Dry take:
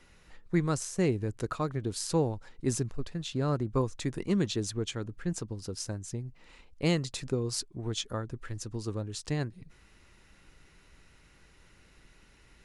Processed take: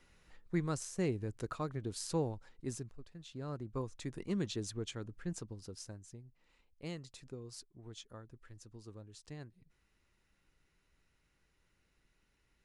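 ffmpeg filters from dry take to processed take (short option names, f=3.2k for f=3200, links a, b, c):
-af "volume=3dB,afade=t=out:st=2.3:d=0.73:silence=0.298538,afade=t=in:st=3.03:d=1.46:silence=0.316228,afade=t=out:st=5.33:d=0.9:silence=0.354813"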